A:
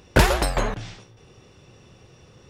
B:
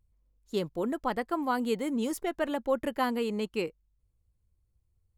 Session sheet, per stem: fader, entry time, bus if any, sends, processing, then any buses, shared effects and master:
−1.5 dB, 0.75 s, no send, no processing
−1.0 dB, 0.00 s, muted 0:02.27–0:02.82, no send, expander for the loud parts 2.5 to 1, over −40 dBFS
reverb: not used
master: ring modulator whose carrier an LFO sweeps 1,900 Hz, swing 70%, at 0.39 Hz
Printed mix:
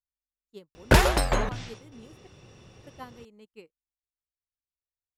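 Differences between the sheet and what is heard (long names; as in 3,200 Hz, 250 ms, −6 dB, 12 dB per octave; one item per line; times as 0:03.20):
stem B −1.0 dB → −10.5 dB
master: missing ring modulator whose carrier an LFO sweeps 1,900 Hz, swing 70%, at 0.39 Hz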